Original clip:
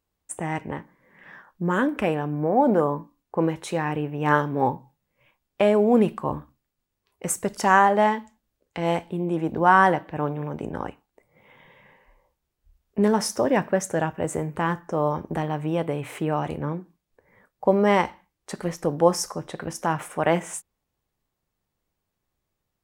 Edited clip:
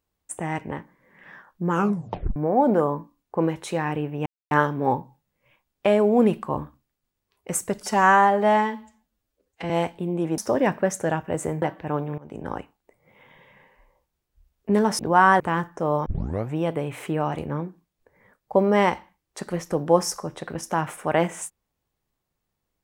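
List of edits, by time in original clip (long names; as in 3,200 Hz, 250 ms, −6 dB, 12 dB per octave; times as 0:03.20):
0:01.70: tape stop 0.66 s
0:04.26: splice in silence 0.25 s
0:07.56–0:08.82: time-stretch 1.5×
0:09.50–0:09.91: swap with 0:13.28–0:14.52
0:10.47–0:10.80: fade in, from −21 dB
0:15.18: tape start 0.48 s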